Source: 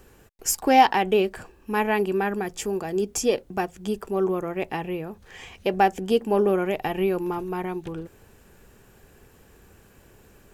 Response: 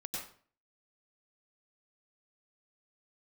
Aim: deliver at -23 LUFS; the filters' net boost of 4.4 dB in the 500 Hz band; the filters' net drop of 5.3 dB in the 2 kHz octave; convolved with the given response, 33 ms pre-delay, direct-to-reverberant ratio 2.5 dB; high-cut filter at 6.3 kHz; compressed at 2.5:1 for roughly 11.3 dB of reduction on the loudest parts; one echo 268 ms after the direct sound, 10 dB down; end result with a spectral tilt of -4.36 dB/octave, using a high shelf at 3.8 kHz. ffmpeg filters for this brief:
-filter_complex "[0:a]lowpass=6300,equalizer=f=500:t=o:g=6,equalizer=f=2000:t=o:g=-5,highshelf=f=3800:g=-7.5,acompressor=threshold=0.0447:ratio=2.5,aecho=1:1:268:0.316,asplit=2[s0][s1];[1:a]atrim=start_sample=2205,adelay=33[s2];[s1][s2]afir=irnorm=-1:irlink=0,volume=0.75[s3];[s0][s3]amix=inputs=2:normalize=0,volume=1.58"

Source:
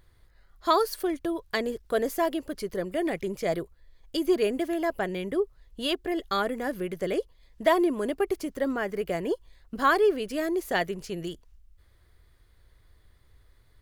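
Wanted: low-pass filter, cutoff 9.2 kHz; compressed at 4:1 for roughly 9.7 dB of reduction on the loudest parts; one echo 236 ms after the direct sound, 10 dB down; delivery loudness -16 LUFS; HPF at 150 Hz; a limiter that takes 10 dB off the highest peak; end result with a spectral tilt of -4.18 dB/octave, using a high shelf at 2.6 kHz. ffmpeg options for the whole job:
-af "highpass=150,lowpass=9200,highshelf=f=2600:g=-3.5,acompressor=threshold=0.0355:ratio=4,alimiter=level_in=1.33:limit=0.0631:level=0:latency=1,volume=0.75,aecho=1:1:236:0.316,volume=10"

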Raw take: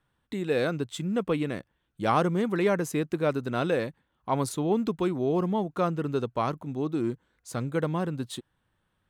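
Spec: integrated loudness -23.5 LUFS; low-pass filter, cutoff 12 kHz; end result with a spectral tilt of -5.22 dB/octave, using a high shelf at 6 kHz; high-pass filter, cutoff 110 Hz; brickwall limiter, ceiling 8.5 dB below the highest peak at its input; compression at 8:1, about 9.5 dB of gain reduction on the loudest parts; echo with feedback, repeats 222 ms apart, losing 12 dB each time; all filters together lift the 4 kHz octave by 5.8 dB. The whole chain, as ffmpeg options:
-af "highpass=110,lowpass=12000,equalizer=f=4000:t=o:g=6,highshelf=f=6000:g=3,acompressor=threshold=0.0355:ratio=8,alimiter=level_in=1.19:limit=0.0631:level=0:latency=1,volume=0.841,aecho=1:1:222|444|666:0.251|0.0628|0.0157,volume=4.47"

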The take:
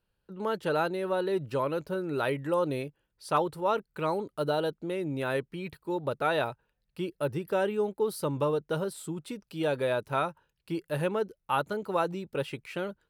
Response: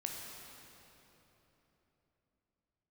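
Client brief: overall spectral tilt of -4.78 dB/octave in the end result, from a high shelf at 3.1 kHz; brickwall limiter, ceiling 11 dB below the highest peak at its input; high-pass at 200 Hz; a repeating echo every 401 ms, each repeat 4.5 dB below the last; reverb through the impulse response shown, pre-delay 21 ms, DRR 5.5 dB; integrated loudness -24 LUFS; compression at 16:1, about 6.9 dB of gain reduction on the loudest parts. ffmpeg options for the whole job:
-filter_complex "[0:a]highpass=200,highshelf=f=3100:g=3.5,acompressor=threshold=0.0355:ratio=16,alimiter=level_in=1.68:limit=0.0631:level=0:latency=1,volume=0.596,aecho=1:1:401|802|1203|1604|2005|2406|2807|3208|3609:0.596|0.357|0.214|0.129|0.0772|0.0463|0.0278|0.0167|0.01,asplit=2[s0][s1];[1:a]atrim=start_sample=2205,adelay=21[s2];[s1][s2]afir=irnorm=-1:irlink=0,volume=0.501[s3];[s0][s3]amix=inputs=2:normalize=0,volume=3.98"

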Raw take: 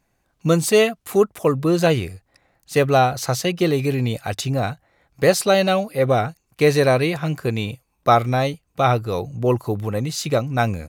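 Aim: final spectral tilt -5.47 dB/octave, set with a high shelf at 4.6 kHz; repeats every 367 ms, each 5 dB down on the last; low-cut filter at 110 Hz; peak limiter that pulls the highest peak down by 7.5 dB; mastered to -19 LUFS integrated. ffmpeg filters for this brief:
-af "highpass=110,highshelf=f=4600:g=-5.5,alimiter=limit=0.316:level=0:latency=1,aecho=1:1:367|734|1101|1468|1835|2202|2569:0.562|0.315|0.176|0.0988|0.0553|0.031|0.0173,volume=1.33"

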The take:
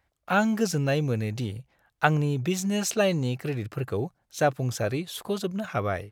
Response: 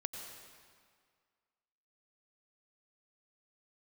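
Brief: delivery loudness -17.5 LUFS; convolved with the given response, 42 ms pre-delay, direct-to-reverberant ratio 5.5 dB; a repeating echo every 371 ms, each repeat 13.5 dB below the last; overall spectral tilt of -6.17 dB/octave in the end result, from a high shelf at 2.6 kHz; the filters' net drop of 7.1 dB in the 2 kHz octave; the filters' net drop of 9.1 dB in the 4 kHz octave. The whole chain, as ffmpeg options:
-filter_complex "[0:a]equalizer=f=2000:t=o:g=-8,highshelf=f=2600:g=-5.5,equalizer=f=4000:t=o:g=-4.5,aecho=1:1:371|742:0.211|0.0444,asplit=2[s0][s1];[1:a]atrim=start_sample=2205,adelay=42[s2];[s1][s2]afir=irnorm=-1:irlink=0,volume=0.562[s3];[s0][s3]amix=inputs=2:normalize=0,volume=2.99"

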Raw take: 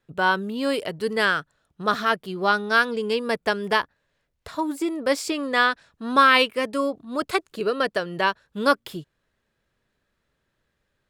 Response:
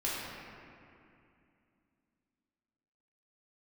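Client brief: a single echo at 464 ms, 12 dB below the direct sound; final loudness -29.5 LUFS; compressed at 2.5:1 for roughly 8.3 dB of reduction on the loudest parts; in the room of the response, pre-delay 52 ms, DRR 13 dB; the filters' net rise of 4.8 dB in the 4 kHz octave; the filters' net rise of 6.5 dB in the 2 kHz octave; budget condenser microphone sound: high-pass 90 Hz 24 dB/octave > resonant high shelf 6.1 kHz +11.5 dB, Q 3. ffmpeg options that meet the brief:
-filter_complex "[0:a]equalizer=f=2000:t=o:g=8.5,equalizer=f=4000:t=o:g=8.5,acompressor=threshold=0.112:ratio=2.5,aecho=1:1:464:0.251,asplit=2[s0][s1];[1:a]atrim=start_sample=2205,adelay=52[s2];[s1][s2]afir=irnorm=-1:irlink=0,volume=0.106[s3];[s0][s3]amix=inputs=2:normalize=0,highpass=f=90:w=0.5412,highpass=f=90:w=1.3066,highshelf=f=6100:t=q:w=3:g=11.5,volume=0.473"

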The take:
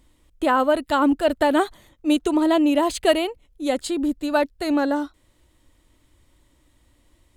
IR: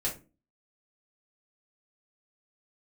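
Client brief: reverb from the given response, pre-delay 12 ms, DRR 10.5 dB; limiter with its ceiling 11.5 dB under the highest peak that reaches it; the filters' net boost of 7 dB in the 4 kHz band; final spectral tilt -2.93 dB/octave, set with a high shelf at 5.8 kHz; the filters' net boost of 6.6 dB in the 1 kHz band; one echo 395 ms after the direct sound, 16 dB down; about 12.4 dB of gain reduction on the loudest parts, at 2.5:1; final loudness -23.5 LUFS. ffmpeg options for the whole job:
-filter_complex "[0:a]equalizer=f=1000:t=o:g=7.5,equalizer=f=4000:t=o:g=7,highshelf=f=5800:g=5.5,acompressor=threshold=0.0355:ratio=2.5,alimiter=level_in=1.06:limit=0.0631:level=0:latency=1,volume=0.944,aecho=1:1:395:0.158,asplit=2[s0][s1];[1:a]atrim=start_sample=2205,adelay=12[s2];[s1][s2]afir=irnorm=-1:irlink=0,volume=0.168[s3];[s0][s3]amix=inputs=2:normalize=0,volume=3.16"

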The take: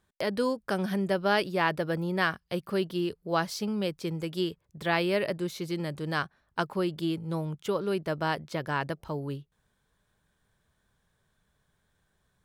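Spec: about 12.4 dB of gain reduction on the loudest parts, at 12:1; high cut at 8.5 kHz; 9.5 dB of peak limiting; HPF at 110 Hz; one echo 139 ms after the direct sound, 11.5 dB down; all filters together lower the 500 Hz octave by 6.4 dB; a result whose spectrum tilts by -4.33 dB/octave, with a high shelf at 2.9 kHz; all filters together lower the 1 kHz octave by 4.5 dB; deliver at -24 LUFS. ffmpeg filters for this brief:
-af "highpass=110,lowpass=8500,equalizer=f=500:t=o:g=-8,equalizer=f=1000:t=o:g=-4,highshelf=f=2900:g=5.5,acompressor=threshold=0.0178:ratio=12,alimiter=level_in=1.78:limit=0.0631:level=0:latency=1,volume=0.562,aecho=1:1:139:0.266,volume=6.68"

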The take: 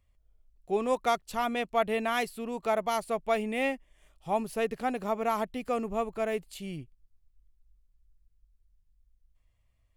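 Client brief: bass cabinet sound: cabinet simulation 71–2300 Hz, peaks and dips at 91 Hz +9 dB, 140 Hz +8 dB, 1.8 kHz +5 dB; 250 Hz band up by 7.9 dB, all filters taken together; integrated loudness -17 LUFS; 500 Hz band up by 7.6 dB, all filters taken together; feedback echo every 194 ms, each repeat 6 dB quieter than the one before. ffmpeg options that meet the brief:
-af "highpass=f=71:w=0.5412,highpass=f=71:w=1.3066,equalizer=f=91:t=q:w=4:g=9,equalizer=f=140:t=q:w=4:g=8,equalizer=f=1800:t=q:w=4:g=5,lowpass=f=2300:w=0.5412,lowpass=f=2300:w=1.3066,equalizer=f=250:t=o:g=6.5,equalizer=f=500:t=o:g=8,aecho=1:1:194|388|582|776|970|1164:0.501|0.251|0.125|0.0626|0.0313|0.0157,volume=2.24"

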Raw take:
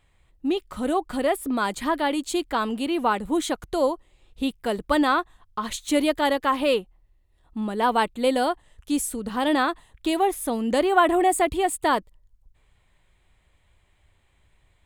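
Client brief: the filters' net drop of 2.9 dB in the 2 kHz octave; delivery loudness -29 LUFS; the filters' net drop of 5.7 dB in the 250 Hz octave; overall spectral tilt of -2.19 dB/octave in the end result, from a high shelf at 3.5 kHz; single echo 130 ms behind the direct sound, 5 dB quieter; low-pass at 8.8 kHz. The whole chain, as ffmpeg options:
-af "lowpass=8800,equalizer=f=250:t=o:g=-7.5,equalizer=f=2000:t=o:g=-5.5,highshelf=f=3500:g=6,aecho=1:1:130:0.562,volume=0.631"

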